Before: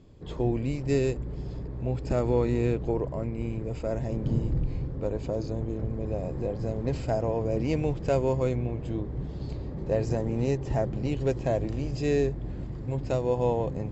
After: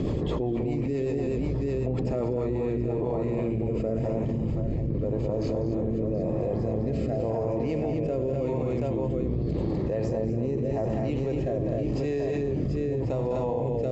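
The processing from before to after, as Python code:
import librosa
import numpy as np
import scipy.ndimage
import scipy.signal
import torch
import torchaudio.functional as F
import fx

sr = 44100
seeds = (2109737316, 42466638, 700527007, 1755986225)

p1 = fx.fade_out_tail(x, sr, length_s=1.13)
p2 = fx.high_shelf(p1, sr, hz=2700.0, db=-11.5)
p3 = p2 + fx.echo_multitap(p2, sr, ms=(90, 198, 248, 731), db=(-13.5, -8.0, -5.0, -6.5), dry=0)
p4 = fx.rotary_switch(p3, sr, hz=8.0, then_hz=0.9, switch_at_s=2.01)
p5 = fx.low_shelf(p4, sr, hz=85.0, db=-11.5)
p6 = fx.notch(p5, sr, hz=1500.0, q=6.8)
p7 = fx.env_flatten(p6, sr, amount_pct=100)
y = p7 * librosa.db_to_amplitude(-5.5)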